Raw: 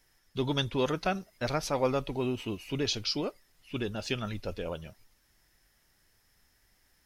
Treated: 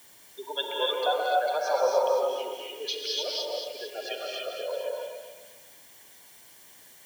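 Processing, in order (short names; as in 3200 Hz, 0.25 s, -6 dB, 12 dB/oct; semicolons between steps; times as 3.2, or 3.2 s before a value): spectral gate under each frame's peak -15 dB strong; steep high-pass 510 Hz 36 dB/oct; air absorption 130 m; non-linear reverb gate 0.32 s rising, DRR -2 dB; in parallel at -6 dB: requantised 8-bit, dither triangular; on the sum: notch 4700 Hz, Q 14; notch comb 1300 Hz; on a send: split-band echo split 1800 Hz, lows 0.129 s, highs 0.224 s, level -6 dB; on the sum: gain +1.5 dB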